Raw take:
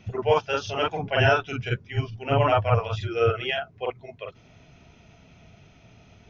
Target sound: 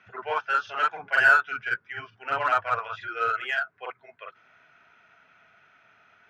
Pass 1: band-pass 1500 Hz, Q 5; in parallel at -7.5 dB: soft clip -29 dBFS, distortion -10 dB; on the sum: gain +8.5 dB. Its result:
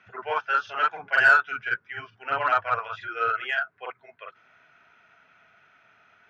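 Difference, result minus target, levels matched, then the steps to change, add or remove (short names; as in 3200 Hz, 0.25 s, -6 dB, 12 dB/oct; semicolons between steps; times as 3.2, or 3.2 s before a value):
soft clip: distortion -5 dB
change: soft clip -36 dBFS, distortion -5 dB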